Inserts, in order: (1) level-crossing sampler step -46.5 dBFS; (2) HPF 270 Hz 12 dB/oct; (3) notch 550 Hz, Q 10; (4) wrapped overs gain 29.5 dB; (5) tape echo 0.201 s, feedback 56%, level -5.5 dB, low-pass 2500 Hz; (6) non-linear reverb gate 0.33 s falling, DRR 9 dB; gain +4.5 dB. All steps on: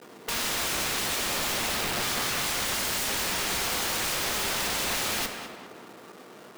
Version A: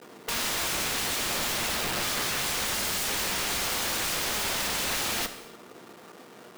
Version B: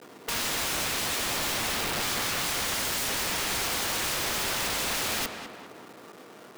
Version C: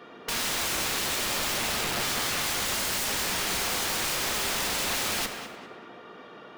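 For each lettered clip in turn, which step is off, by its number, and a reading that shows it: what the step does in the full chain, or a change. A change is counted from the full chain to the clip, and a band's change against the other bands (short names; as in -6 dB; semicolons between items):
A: 5, momentary loudness spread change -4 LU; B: 6, crest factor change -2.0 dB; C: 1, distortion -28 dB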